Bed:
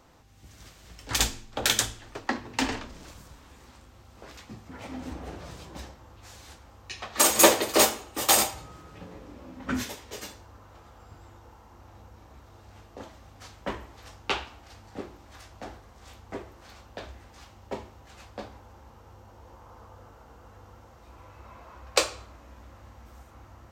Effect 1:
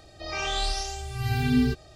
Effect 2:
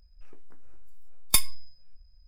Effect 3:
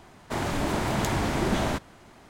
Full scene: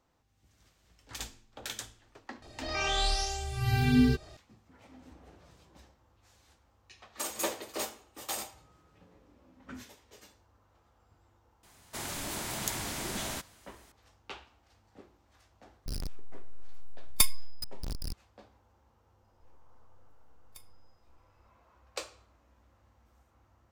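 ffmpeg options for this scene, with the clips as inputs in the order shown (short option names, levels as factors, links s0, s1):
-filter_complex "[2:a]asplit=2[s0][s1];[0:a]volume=0.158[s2];[3:a]crystalizer=i=6.5:c=0[s3];[s0]aeval=exprs='val(0)+0.5*0.0596*sgn(val(0))':c=same[s4];[s1]acompressor=threshold=0.0282:ratio=6:attack=3.2:release=140:knee=1:detection=peak[s5];[1:a]atrim=end=1.95,asetpts=PTS-STARTPTS,volume=0.891,afade=t=in:d=0.004:c=hsin,afade=t=out:st=1.946:d=0.004:c=hsin,adelay=2420[s6];[s3]atrim=end=2.29,asetpts=PTS-STARTPTS,volume=0.188,afade=t=in:d=0.004:c=hsin,afade=t=out:st=2.286:d=0.004:c=hsin,adelay=11630[s7];[s4]atrim=end=2.27,asetpts=PTS-STARTPTS,volume=0.668,afade=t=in:d=0.004:c=hsin,afade=t=out:st=2.266:d=0.004:c=hsin,adelay=15860[s8];[s5]atrim=end=2.27,asetpts=PTS-STARTPTS,volume=0.141,afade=t=in:d=0.004:c=hsin,afade=t=out:st=2.266:d=0.004:c=hsin,adelay=19220[s9];[s2][s6][s7][s8][s9]amix=inputs=5:normalize=0"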